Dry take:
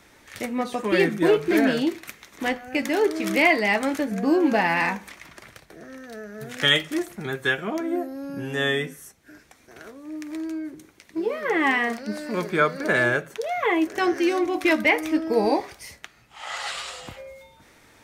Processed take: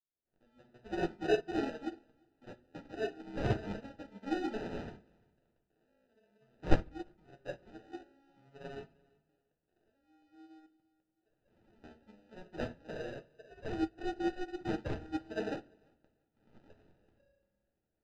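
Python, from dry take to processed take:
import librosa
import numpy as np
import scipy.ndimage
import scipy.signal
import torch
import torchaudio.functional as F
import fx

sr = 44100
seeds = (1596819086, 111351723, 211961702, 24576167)

p1 = fx.fade_in_head(x, sr, length_s=0.92)
p2 = fx.pre_emphasis(p1, sr, coefficient=0.97, at=(10.66, 11.84))
p3 = np.clip(p2, -10.0 ** (-21.0 / 20.0), 10.0 ** (-21.0 / 20.0))
p4 = p2 + (p3 * librosa.db_to_amplitude(-9.0))
p5 = fx.spec_gate(p4, sr, threshold_db=-30, keep='strong')
p6 = fx.sample_hold(p5, sr, seeds[0], rate_hz=1100.0, jitter_pct=0)
p7 = fx.air_absorb(p6, sr, metres=180.0)
p8 = p7 + fx.echo_feedback(p7, sr, ms=343, feedback_pct=24, wet_db=-15.0, dry=0)
p9 = fx.room_shoebox(p8, sr, seeds[1], volume_m3=68.0, walls='mixed', distance_m=0.48)
p10 = fx.upward_expand(p9, sr, threshold_db=-27.0, expansion=2.5)
y = p10 * librosa.db_to_amplitude(-8.0)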